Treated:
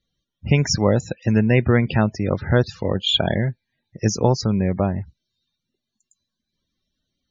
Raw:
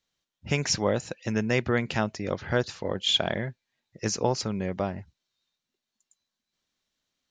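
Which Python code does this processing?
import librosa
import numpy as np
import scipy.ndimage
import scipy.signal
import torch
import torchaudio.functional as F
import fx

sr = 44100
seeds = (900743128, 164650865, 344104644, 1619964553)

y = fx.low_shelf(x, sr, hz=230.0, db=10.5)
y = fx.spec_topn(y, sr, count=64)
y = y * 10.0 ** (4.5 / 20.0)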